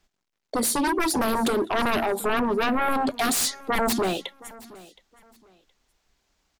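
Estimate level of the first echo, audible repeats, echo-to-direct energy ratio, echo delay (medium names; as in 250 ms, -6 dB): -21.0 dB, 2, -20.5 dB, 719 ms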